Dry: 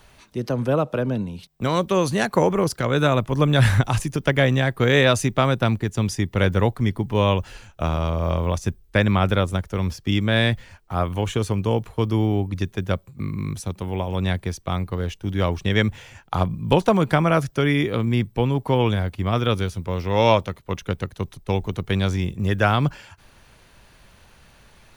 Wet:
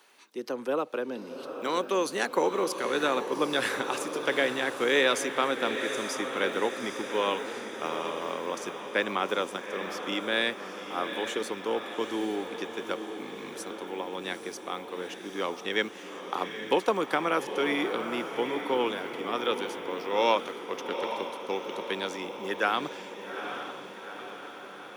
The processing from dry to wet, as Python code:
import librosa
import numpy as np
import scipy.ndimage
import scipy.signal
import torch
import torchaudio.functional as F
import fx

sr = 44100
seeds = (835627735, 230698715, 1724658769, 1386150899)

y = scipy.signal.sosfilt(scipy.signal.butter(4, 300.0, 'highpass', fs=sr, output='sos'), x)
y = fx.peak_eq(y, sr, hz=640.0, db=-9.0, octaves=0.22)
y = fx.echo_diffused(y, sr, ms=837, feedback_pct=62, wet_db=-8.0)
y = F.gain(torch.from_numpy(y), -5.0).numpy()